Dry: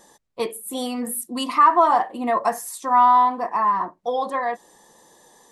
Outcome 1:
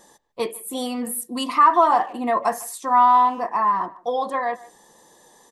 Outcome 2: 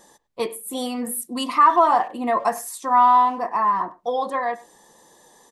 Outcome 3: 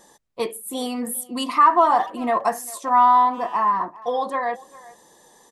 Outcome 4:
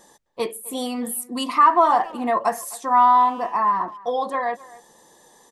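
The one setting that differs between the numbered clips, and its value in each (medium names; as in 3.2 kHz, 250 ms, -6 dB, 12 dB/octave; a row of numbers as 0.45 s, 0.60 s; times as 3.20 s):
speakerphone echo, time: 150 ms, 100 ms, 400 ms, 260 ms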